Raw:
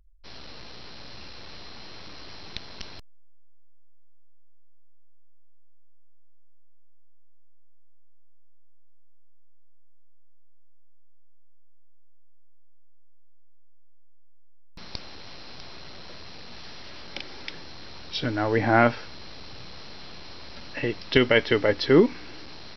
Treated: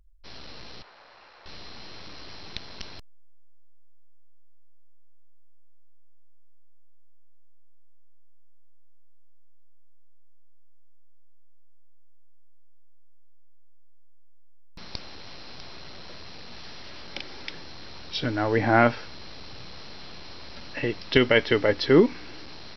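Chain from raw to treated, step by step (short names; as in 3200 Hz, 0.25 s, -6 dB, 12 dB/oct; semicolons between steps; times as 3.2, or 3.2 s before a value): 0.82–1.46 three-band isolator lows -23 dB, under 520 Hz, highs -15 dB, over 2000 Hz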